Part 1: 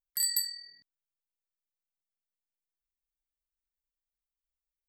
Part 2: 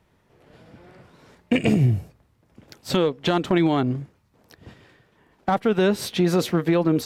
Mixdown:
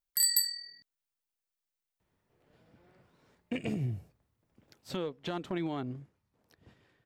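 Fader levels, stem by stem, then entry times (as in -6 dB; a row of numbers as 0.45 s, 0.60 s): +2.5 dB, -15.0 dB; 0.00 s, 2.00 s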